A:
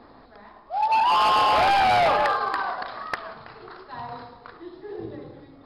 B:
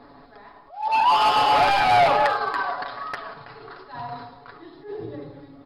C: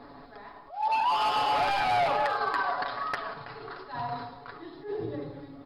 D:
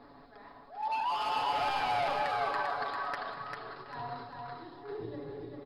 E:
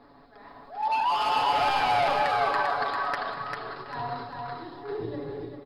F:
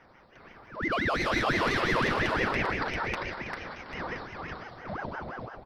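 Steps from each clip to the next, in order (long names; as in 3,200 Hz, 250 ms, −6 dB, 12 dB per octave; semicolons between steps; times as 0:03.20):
comb filter 7.1 ms, depth 61%; level that may rise only so fast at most 150 dB per second
downward compressor 6 to 1, threshold −24 dBFS, peak gain reduction 9 dB
repeating echo 396 ms, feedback 27%, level −4 dB; level −6.5 dB
automatic gain control gain up to 7 dB
ring modulator whose carrier an LFO sweeps 700 Hz, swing 75%, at 5.8 Hz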